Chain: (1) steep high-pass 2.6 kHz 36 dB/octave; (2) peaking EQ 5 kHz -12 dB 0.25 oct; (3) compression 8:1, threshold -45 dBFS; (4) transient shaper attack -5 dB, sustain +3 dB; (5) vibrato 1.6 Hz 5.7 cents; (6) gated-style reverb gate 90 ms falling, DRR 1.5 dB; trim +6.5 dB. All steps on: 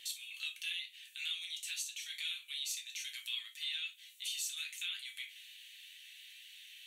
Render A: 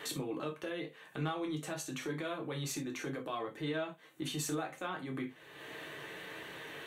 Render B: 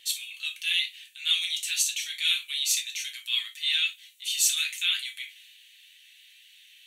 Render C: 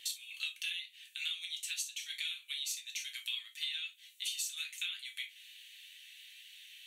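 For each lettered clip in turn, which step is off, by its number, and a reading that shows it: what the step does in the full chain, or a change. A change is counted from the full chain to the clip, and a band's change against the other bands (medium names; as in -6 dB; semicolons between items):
1, crest factor change -2.5 dB; 3, momentary loudness spread change -4 LU; 4, loudness change +1.5 LU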